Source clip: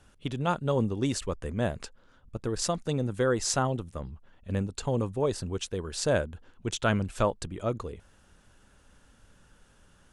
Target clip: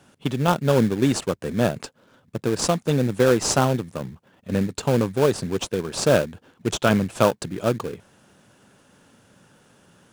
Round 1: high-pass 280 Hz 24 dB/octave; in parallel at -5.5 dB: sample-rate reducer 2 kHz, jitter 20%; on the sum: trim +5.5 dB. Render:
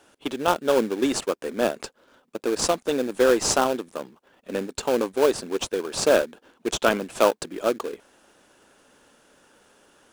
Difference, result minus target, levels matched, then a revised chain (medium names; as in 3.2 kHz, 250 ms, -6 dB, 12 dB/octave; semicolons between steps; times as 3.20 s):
125 Hz band -16.5 dB
high-pass 120 Hz 24 dB/octave; in parallel at -5.5 dB: sample-rate reducer 2 kHz, jitter 20%; on the sum: trim +5.5 dB